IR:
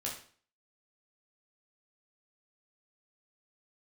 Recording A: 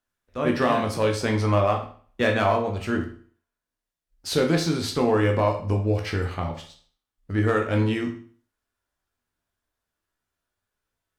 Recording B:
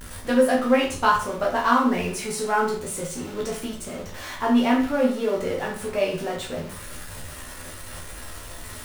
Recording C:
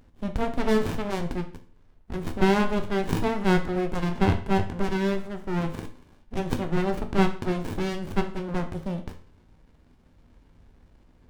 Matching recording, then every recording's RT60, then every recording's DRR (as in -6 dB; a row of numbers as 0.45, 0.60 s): B; 0.45, 0.45, 0.45 s; 1.5, -3.5, 5.5 dB